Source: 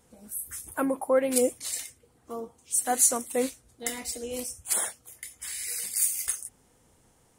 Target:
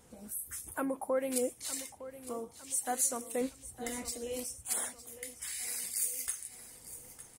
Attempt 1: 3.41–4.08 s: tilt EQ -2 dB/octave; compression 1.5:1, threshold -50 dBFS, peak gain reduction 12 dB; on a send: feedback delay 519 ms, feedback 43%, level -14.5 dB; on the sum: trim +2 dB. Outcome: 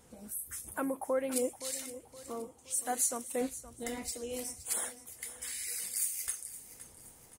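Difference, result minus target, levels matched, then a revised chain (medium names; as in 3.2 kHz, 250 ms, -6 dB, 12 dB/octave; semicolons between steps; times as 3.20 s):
echo 390 ms early
3.41–4.08 s: tilt EQ -2 dB/octave; compression 1.5:1, threshold -50 dBFS, peak gain reduction 12 dB; on a send: feedback delay 909 ms, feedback 43%, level -14.5 dB; on the sum: trim +2 dB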